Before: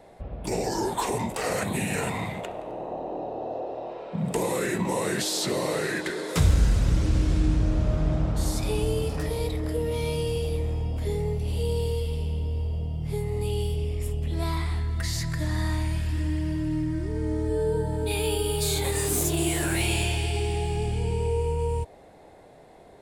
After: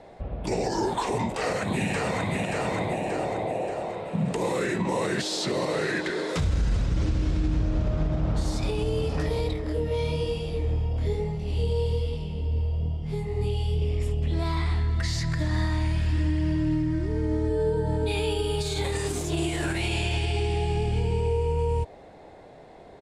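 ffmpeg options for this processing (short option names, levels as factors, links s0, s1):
-filter_complex "[0:a]asplit=2[s0][s1];[s1]afade=t=in:st=1.28:d=0.01,afade=t=out:st=2.35:d=0.01,aecho=0:1:580|1160|1740|2320|2900|3480|4060:0.668344|0.334172|0.167086|0.083543|0.0417715|0.0208857|0.0104429[s2];[s0][s2]amix=inputs=2:normalize=0,asettb=1/sr,asplit=3[s3][s4][s5];[s3]atrim=end=9.534[s6];[s4]atrim=start=9.53:end=13.82,asetpts=PTS-STARTPTS,afade=t=in:d=0.004:c=qsin,afade=t=out:st=4.286:d=0.004:c=qsin,flanger=delay=20:depth=7.9:speed=1.1[s7];[s5]atrim=start=13.816[s8];[s6][s7]acrossfade=d=0.004:c1=hsin:c2=qsin[s9];[s9][s8]acrossfade=d=0.004:c1=qsin:c2=hsin,alimiter=limit=0.1:level=0:latency=1:release=101,lowpass=6000,volume=1.41"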